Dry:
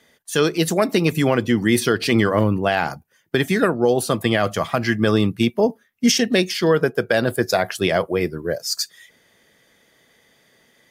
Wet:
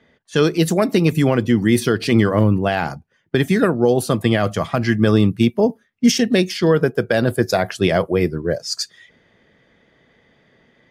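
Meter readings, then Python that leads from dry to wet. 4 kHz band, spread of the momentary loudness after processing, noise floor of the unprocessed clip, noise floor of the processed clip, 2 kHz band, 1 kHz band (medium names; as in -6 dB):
-1.5 dB, 7 LU, -60 dBFS, -61 dBFS, -1.0 dB, -0.5 dB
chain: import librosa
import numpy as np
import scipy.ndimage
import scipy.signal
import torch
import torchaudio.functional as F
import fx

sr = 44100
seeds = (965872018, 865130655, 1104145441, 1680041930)

p1 = fx.env_lowpass(x, sr, base_hz=2900.0, full_db=-16.0)
p2 = fx.low_shelf(p1, sr, hz=340.0, db=7.5)
p3 = fx.rider(p2, sr, range_db=4, speed_s=2.0)
p4 = p2 + (p3 * librosa.db_to_amplitude(0.0))
y = p4 * librosa.db_to_amplitude(-7.5)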